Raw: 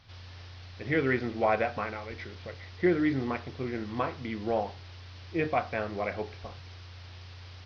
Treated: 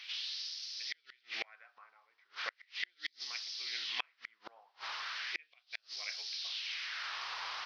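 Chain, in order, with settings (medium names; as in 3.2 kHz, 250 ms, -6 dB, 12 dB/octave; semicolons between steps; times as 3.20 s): LFO high-pass sine 0.37 Hz 1–5.2 kHz; inverted gate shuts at -33 dBFS, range -39 dB; trim +10 dB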